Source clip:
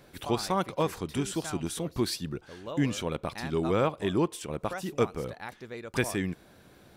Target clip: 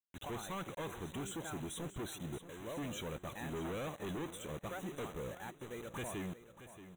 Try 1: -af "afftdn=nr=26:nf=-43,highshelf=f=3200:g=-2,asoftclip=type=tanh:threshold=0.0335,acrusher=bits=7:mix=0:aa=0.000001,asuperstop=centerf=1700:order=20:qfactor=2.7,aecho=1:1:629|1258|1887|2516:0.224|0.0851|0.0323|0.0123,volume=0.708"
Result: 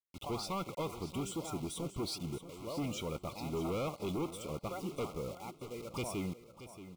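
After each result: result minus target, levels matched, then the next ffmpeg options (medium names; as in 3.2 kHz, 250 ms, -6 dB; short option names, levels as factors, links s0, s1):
2 kHz band -6.5 dB; saturation: distortion -4 dB
-af "afftdn=nr=26:nf=-43,highshelf=f=3200:g=-2,asoftclip=type=tanh:threshold=0.0335,acrusher=bits=7:mix=0:aa=0.000001,asuperstop=centerf=4900:order=20:qfactor=2.7,aecho=1:1:629|1258|1887|2516:0.224|0.0851|0.0323|0.0123,volume=0.708"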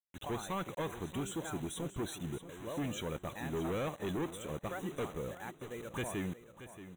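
saturation: distortion -4 dB
-af "afftdn=nr=26:nf=-43,highshelf=f=3200:g=-2,asoftclip=type=tanh:threshold=0.015,acrusher=bits=7:mix=0:aa=0.000001,asuperstop=centerf=4900:order=20:qfactor=2.7,aecho=1:1:629|1258|1887|2516:0.224|0.0851|0.0323|0.0123,volume=0.708"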